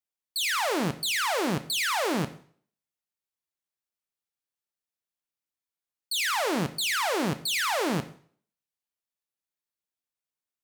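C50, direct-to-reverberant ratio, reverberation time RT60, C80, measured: 15.0 dB, 10.0 dB, 0.50 s, 18.5 dB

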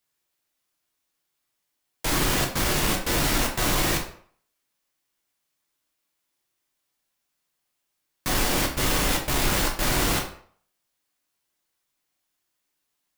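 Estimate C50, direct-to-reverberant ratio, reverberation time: 7.5 dB, 0.0 dB, 0.55 s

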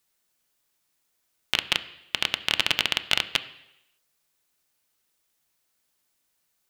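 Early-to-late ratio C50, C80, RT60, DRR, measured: 15.5 dB, 17.5 dB, 0.85 s, 9.5 dB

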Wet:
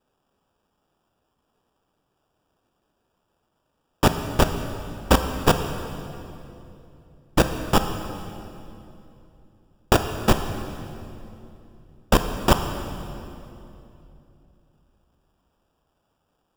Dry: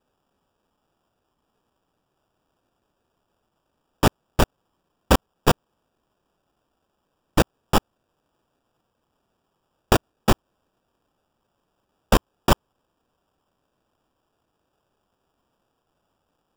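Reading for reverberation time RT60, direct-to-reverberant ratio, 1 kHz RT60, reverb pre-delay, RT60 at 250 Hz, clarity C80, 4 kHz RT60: 2.9 s, 7.0 dB, 2.6 s, 17 ms, 3.5 s, 8.5 dB, 2.3 s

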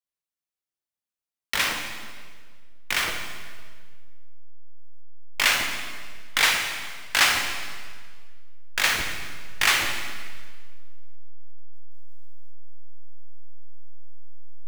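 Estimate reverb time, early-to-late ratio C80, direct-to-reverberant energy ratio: 1.8 s, 6.0 dB, 2.0 dB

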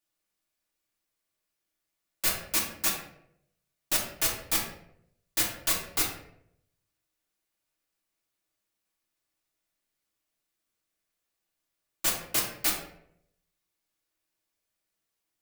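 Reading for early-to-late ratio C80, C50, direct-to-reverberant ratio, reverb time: 8.0 dB, 4.5 dB, -4.5 dB, 0.75 s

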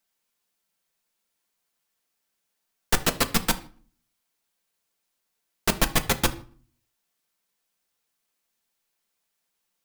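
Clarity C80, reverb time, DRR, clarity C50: 20.5 dB, 0.45 s, 6.5 dB, 16.5 dB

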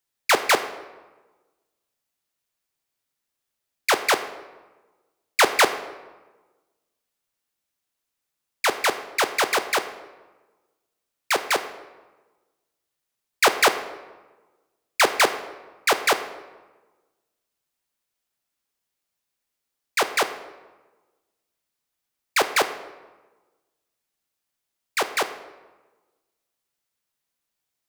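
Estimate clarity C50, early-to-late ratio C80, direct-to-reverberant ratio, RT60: 11.5 dB, 13.5 dB, 9.0 dB, 1.2 s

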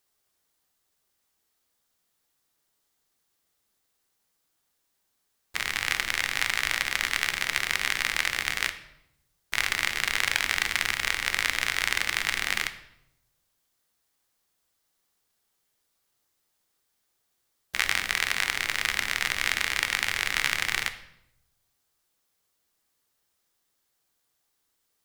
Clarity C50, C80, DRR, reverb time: 12.5 dB, 15.5 dB, 8.0 dB, 0.80 s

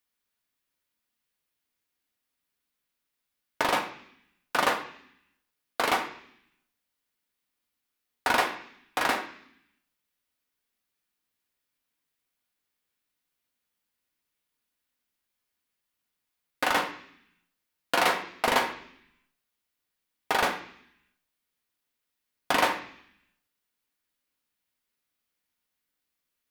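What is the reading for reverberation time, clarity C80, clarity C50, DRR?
0.65 s, 12.5 dB, 10.0 dB, 2.0 dB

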